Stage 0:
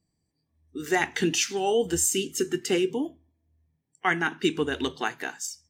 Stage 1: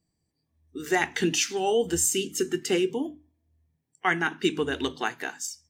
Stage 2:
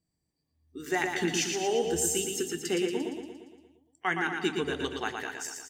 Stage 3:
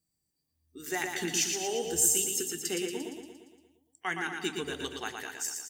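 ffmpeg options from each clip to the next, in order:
-af "bandreject=f=50:t=h:w=6,bandreject=f=100:t=h:w=6,bandreject=f=150:t=h:w=6,bandreject=f=200:t=h:w=6,bandreject=f=250:t=h:w=6,bandreject=f=300:t=h:w=6"
-af "aecho=1:1:116|232|348|464|580|696|812|928:0.562|0.321|0.183|0.104|0.0594|0.0338|0.0193|0.011,volume=-5dB"
-af "crystalizer=i=2.5:c=0,volume=-5.5dB"

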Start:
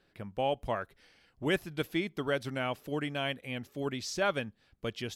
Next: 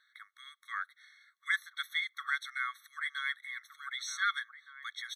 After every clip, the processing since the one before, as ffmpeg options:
-filter_complex "[0:a]equalizer=f=2.6k:w=1.2:g=10.5,asplit=2[a][b];[b]adelay=1516,volume=-9dB,highshelf=f=4k:g=-34.1[c];[a][c]amix=inputs=2:normalize=0,afftfilt=real='re*eq(mod(floor(b*sr/1024/1100),2),1)':imag='im*eq(mod(floor(b*sr/1024/1100),2),1)':win_size=1024:overlap=0.75"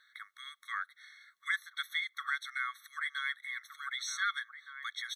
-af "acompressor=threshold=-45dB:ratio=1.5,volume=4.5dB"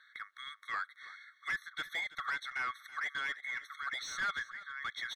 -filter_complex "[0:a]asplit=2[a][b];[b]highpass=f=720:p=1,volume=18dB,asoftclip=type=tanh:threshold=-19dB[c];[a][c]amix=inputs=2:normalize=0,lowpass=f=1.8k:p=1,volume=-6dB,aecho=1:1:327:0.133,volume=-5.5dB"

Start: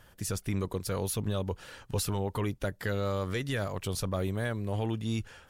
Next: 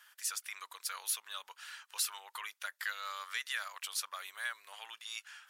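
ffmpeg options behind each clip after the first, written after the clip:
-af "highpass=f=1.2k:w=0.5412,highpass=f=1.2k:w=1.3066,volume=1dB"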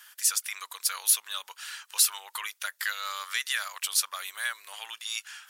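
-af "highshelf=f=3.5k:g=8.5,volume=5dB"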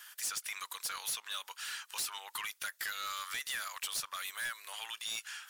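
-filter_complex "[0:a]acrossover=split=1100|7900[a][b][c];[a]acompressor=threshold=-48dB:ratio=4[d];[b]acompressor=threshold=-31dB:ratio=4[e];[c]acompressor=threshold=-36dB:ratio=4[f];[d][e][f]amix=inputs=3:normalize=0,asoftclip=type=tanh:threshold=-32dB"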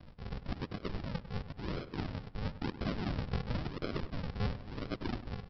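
-filter_complex "[0:a]aresample=11025,acrusher=samples=24:mix=1:aa=0.000001:lfo=1:lforange=24:lforate=0.97,aresample=44100,asplit=2[a][b];[b]adelay=99,lowpass=f=2.7k:p=1,volume=-13dB,asplit=2[c][d];[d]adelay=99,lowpass=f=2.7k:p=1,volume=0.41,asplit=2[e][f];[f]adelay=99,lowpass=f=2.7k:p=1,volume=0.41,asplit=2[g][h];[h]adelay=99,lowpass=f=2.7k:p=1,volume=0.41[i];[a][c][e][g][i]amix=inputs=5:normalize=0,volume=4.5dB"

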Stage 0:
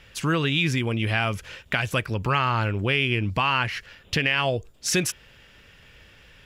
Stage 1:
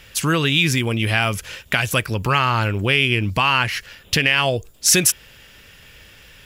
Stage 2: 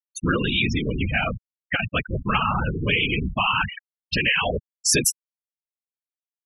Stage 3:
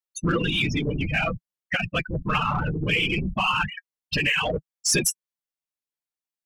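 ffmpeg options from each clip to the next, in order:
-af "aemphasis=mode=production:type=50kf,volume=4dB"
-af "acrusher=bits=6:mode=log:mix=0:aa=0.000001,afftfilt=real='hypot(re,im)*cos(2*PI*random(0))':imag='hypot(re,im)*sin(2*PI*random(1))':win_size=512:overlap=0.75,afftfilt=real='re*gte(hypot(re,im),0.1)':imag='im*gte(hypot(re,im),0.1)':win_size=1024:overlap=0.75,volume=2.5dB"
-filter_complex "[0:a]asplit=2[a][b];[b]asoftclip=type=tanh:threshold=-24dB,volume=-5dB[c];[a][c]amix=inputs=2:normalize=0,flanger=delay=5.3:depth=1.6:regen=33:speed=0.59:shape=triangular"

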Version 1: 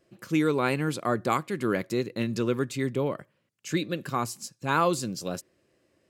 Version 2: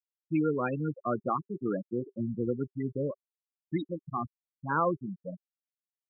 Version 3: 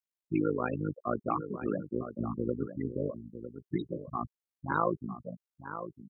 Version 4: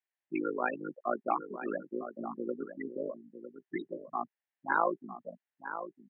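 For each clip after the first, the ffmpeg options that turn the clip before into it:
-af "afftfilt=real='re*gte(hypot(re,im),0.141)':imag='im*gte(hypot(re,im),0.141)':win_size=1024:overlap=0.75,bandreject=f=390:w=12,volume=-3dB"
-af "tremolo=f=53:d=0.857,aecho=1:1:955:0.282,volume=2dB"
-af "highpass=f=280:w=0.5412,highpass=f=280:w=1.3066,equalizer=f=300:t=q:w=4:g=-6,equalizer=f=460:t=q:w=4:g=-8,equalizer=f=790:t=q:w=4:g=4,equalizer=f=1.2k:t=q:w=4:g=-6,equalizer=f=1.8k:t=q:w=4:g=9,lowpass=f=3k:w=0.5412,lowpass=f=3k:w=1.3066,volume=2.5dB"

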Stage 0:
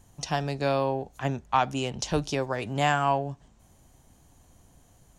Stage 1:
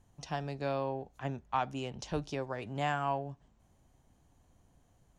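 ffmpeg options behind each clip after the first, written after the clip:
-af "aemphasis=mode=reproduction:type=cd,volume=-8.5dB"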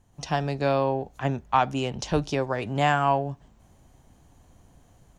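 -af "dynaudnorm=f=110:g=3:m=7.5dB,volume=3dB"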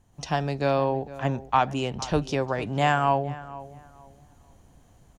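-filter_complex "[0:a]asplit=2[a][b];[b]adelay=460,lowpass=f=1.7k:p=1,volume=-16dB,asplit=2[c][d];[d]adelay=460,lowpass=f=1.7k:p=1,volume=0.27,asplit=2[e][f];[f]adelay=460,lowpass=f=1.7k:p=1,volume=0.27[g];[a][c][e][g]amix=inputs=4:normalize=0"

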